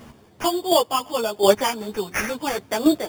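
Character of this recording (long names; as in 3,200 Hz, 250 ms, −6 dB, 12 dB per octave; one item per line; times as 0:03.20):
chopped level 1.4 Hz, depth 65%, duty 15%
aliases and images of a low sample rate 4,000 Hz, jitter 0%
a shimmering, thickened sound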